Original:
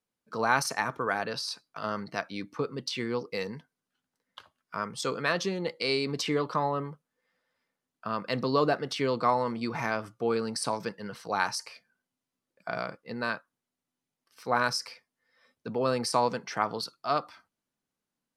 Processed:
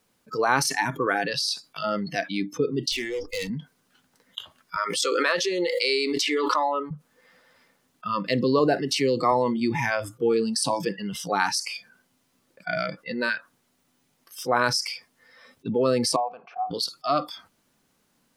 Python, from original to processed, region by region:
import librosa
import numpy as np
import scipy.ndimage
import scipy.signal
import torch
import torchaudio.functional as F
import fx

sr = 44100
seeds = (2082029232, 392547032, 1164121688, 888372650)

y = fx.chain(x, sr, fx.highpass(hz=79.0, slope=24),
    fx.high_shelf(hz=2900.0, db=4.0),
    fx.tube_stage(drive_db=34.0, bias=0.6), at=(2.92, 3.5))
y = fx.chain(y, sr, fx.highpass(hz=520.0, slope=12),
    fx.pre_swell(db_per_s=35.0), at=(4.76, 6.91))
y = fx.chain(y, sr, fx.high_shelf(hz=4600.0, db=6.0),
    fx.notch(hz=3400.0, q=6.6),
    fx.band_widen(depth_pct=40), at=(8.59, 9.32))
y = fx.chain(y, sr, fx.vowel_filter(vowel='a'),
    fx.bass_treble(bass_db=1, treble_db=-10), at=(16.16, 16.71))
y = fx.noise_reduce_blind(y, sr, reduce_db=21)
y = fx.dynamic_eq(y, sr, hz=340.0, q=0.98, threshold_db=-42.0, ratio=4.0, max_db=6)
y = fx.env_flatten(y, sr, amount_pct=50)